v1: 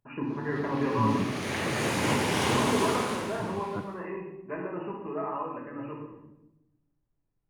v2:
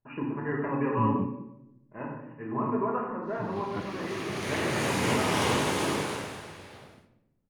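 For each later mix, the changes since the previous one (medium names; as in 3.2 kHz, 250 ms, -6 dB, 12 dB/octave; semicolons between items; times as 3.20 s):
background: entry +3.00 s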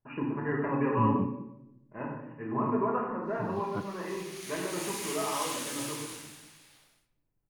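background: add pre-emphasis filter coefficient 0.97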